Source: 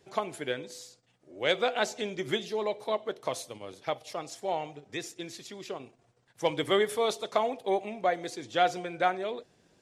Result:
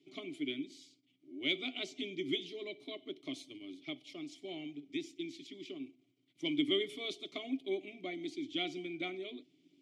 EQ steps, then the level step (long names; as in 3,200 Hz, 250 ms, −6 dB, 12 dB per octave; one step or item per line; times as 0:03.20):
formant filter i
high-pass filter 110 Hz
phaser with its sweep stopped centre 330 Hz, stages 8
+12.0 dB